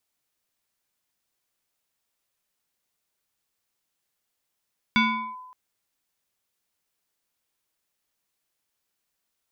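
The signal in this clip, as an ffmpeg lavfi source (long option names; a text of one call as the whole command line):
ffmpeg -f lavfi -i "aevalsrc='0.178*pow(10,-3*t/1.09)*sin(2*PI*1010*t+1.8*clip(1-t/0.4,0,1)*sin(2*PI*1.22*1010*t))':duration=0.57:sample_rate=44100" out.wav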